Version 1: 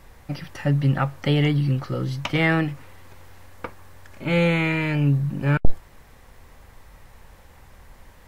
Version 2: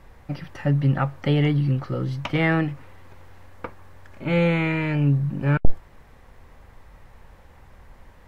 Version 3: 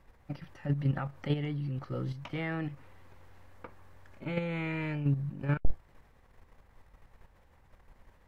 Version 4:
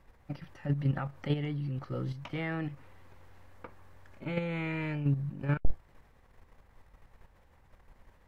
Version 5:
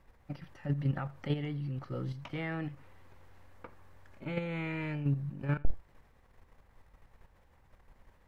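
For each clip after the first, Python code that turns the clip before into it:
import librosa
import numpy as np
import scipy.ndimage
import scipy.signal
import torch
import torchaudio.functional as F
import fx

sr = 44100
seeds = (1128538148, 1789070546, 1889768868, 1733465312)

y1 = fx.high_shelf(x, sr, hz=3800.0, db=-10.5)
y2 = fx.level_steps(y1, sr, step_db=9)
y2 = F.gain(torch.from_numpy(y2), -7.0).numpy()
y3 = y2
y4 = y3 + 10.0 ** (-22.0 / 20.0) * np.pad(y3, (int(85 * sr / 1000.0), 0))[:len(y3)]
y4 = F.gain(torch.from_numpy(y4), -2.0).numpy()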